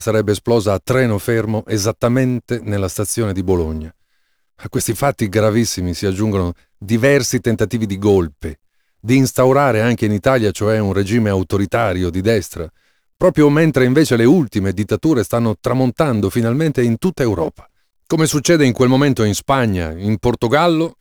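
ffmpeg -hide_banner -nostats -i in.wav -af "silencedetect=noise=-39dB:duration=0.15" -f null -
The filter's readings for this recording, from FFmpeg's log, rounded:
silence_start: 3.90
silence_end: 4.59 | silence_duration: 0.69
silence_start: 6.53
silence_end: 6.82 | silence_duration: 0.29
silence_start: 8.54
silence_end: 9.04 | silence_duration: 0.49
silence_start: 12.69
silence_end: 13.21 | silence_duration: 0.52
silence_start: 17.65
silence_end: 18.07 | silence_duration: 0.42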